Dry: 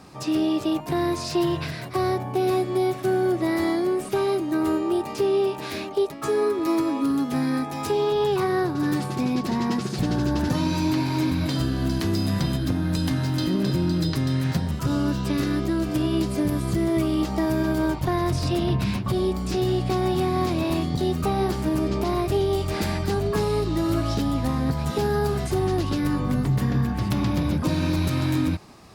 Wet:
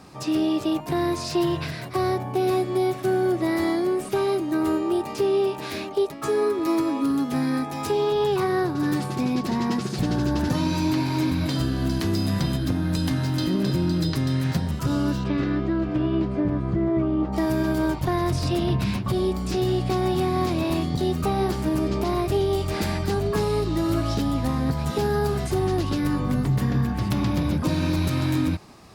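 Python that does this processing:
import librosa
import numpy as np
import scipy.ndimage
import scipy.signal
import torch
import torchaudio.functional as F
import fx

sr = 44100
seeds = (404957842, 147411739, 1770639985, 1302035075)

y = fx.lowpass(x, sr, hz=fx.line((15.23, 3100.0), (17.32, 1200.0)), slope=12, at=(15.23, 17.32), fade=0.02)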